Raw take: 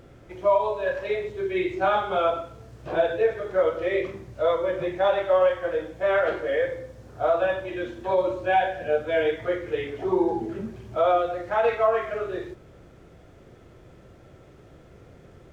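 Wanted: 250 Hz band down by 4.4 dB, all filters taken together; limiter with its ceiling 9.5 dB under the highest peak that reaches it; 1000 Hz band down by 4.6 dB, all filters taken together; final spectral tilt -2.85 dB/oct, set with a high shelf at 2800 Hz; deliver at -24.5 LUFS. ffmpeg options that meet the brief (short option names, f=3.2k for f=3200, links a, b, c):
-af "equalizer=f=250:t=o:g=-7.5,equalizer=f=1k:t=o:g=-7.5,highshelf=f=2.8k:g=8.5,volume=8dB,alimiter=limit=-15dB:level=0:latency=1"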